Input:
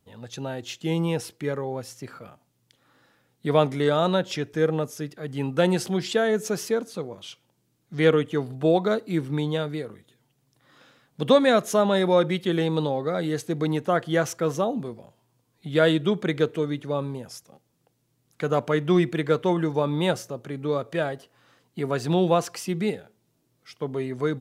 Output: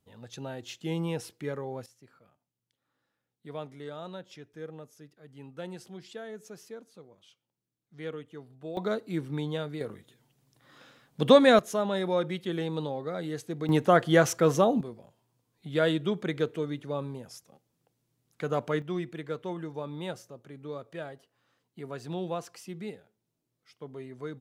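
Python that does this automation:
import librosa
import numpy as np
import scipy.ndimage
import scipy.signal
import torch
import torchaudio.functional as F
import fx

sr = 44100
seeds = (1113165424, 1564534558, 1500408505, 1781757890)

y = fx.gain(x, sr, db=fx.steps((0.0, -6.5), (1.86, -19.0), (8.77, -6.5), (9.81, 0.0), (11.59, -8.0), (13.69, 2.0), (14.81, -6.0), (18.82, -13.0)))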